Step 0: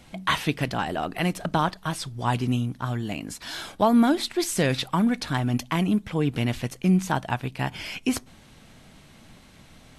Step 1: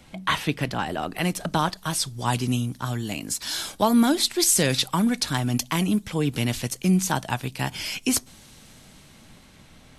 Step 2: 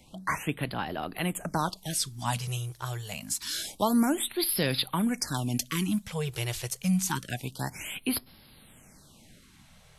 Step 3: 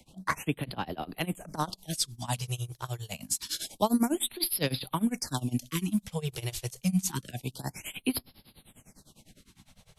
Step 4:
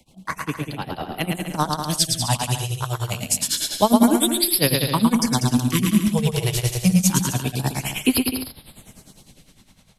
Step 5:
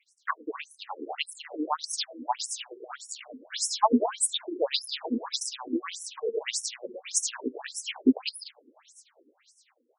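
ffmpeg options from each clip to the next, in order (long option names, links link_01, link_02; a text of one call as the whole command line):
ffmpeg -i in.wav -filter_complex "[0:a]bandreject=frequency=690:width=19,acrossover=split=210|4300[link_01][link_02][link_03];[link_03]dynaudnorm=framelen=250:gausssize=11:maxgain=11.5dB[link_04];[link_01][link_02][link_04]amix=inputs=3:normalize=0" out.wav
ffmpeg -i in.wav -af "highshelf=frequency=7400:gain=5,afftfilt=real='re*(1-between(b*sr/1024,220*pow(7700/220,0.5+0.5*sin(2*PI*0.27*pts/sr))/1.41,220*pow(7700/220,0.5+0.5*sin(2*PI*0.27*pts/sr))*1.41))':imag='im*(1-between(b*sr/1024,220*pow(7700/220,0.5+0.5*sin(2*PI*0.27*pts/sr))/1.41,220*pow(7700/220,0.5+0.5*sin(2*PI*0.27*pts/sr))*1.41))':win_size=1024:overlap=0.75,volume=-5.5dB" out.wav
ffmpeg -i in.wav -filter_complex "[0:a]acrossover=split=120|1300|1900[link_01][link_02][link_03][link_04];[link_03]acrusher=bits=4:mix=0:aa=0.5[link_05];[link_01][link_02][link_05][link_04]amix=inputs=4:normalize=0,tremolo=f=9.9:d=0.93,volume=2.5dB" out.wav
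ffmpeg -i in.wav -af "dynaudnorm=framelen=270:gausssize=9:maxgain=9.5dB,aecho=1:1:110|192.5|254.4|300.8|335.6:0.631|0.398|0.251|0.158|0.1,volume=1dB" out.wav
ffmpeg -i in.wav -af "afftfilt=real='re*between(b*sr/1024,330*pow(7700/330,0.5+0.5*sin(2*PI*1.7*pts/sr))/1.41,330*pow(7700/330,0.5+0.5*sin(2*PI*1.7*pts/sr))*1.41)':imag='im*between(b*sr/1024,330*pow(7700/330,0.5+0.5*sin(2*PI*1.7*pts/sr))/1.41,330*pow(7700/330,0.5+0.5*sin(2*PI*1.7*pts/sr))*1.41)':win_size=1024:overlap=0.75" out.wav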